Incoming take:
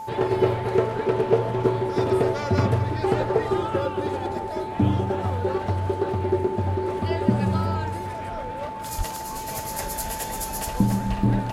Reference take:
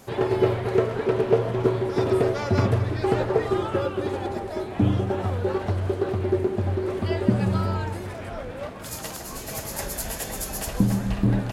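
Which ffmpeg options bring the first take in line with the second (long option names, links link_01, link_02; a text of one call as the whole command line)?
ffmpeg -i in.wav -filter_complex "[0:a]bandreject=frequency=880:width=30,asplit=3[link_01][link_02][link_03];[link_01]afade=type=out:start_time=8.97:duration=0.02[link_04];[link_02]highpass=frequency=140:width=0.5412,highpass=frequency=140:width=1.3066,afade=type=in:start_time=8.97:duration=0.02,afade=type=out:start_time=9.09:duration=0.02[link_05];[link_03]afade=type=in:start_time=9.09:duration=0.02[link_06];[link_04][link_05][link_06]amix=inputs=3:normalize=0" out.wav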